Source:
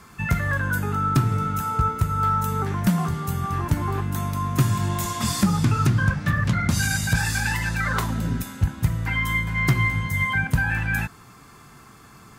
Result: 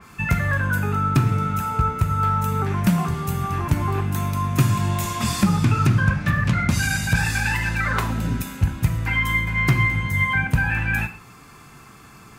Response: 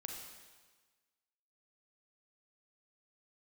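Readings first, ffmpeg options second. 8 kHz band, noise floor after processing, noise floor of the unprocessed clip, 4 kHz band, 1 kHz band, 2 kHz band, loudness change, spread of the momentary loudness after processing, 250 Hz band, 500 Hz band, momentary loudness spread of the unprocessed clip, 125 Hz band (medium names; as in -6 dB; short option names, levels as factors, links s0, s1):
-1.0 dB, -46 dBFS, -48 dBFS, +0.5 dB, +1.0 dB, +2.5 dB, +2.0 dB, 5 LU, +1.5 dB, +2.0 dB, 6 LU, +2.0 dB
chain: -filter_complex "[0:a]equalizer=f=2500:w=5.4:g=6.5,asplit=2[s0][s1];[1:a]atrim=start_sample=2205,atrim=end_sample=6174[s2];[s1][s2]afir=irnorm=-1:irlink=0,volume=0.891[s3];[s0][s3]amix=inputs=2:normalize=0,adynamicequalizer=threshold=0.0224:dfrequency=3500:dqfactor=0.7:tfrequency=3500:tqfactor=0.7:attack=5:release=100:ratio=0.375:range=2:mode=cutabove:tftype=highshelf,volume=0.794"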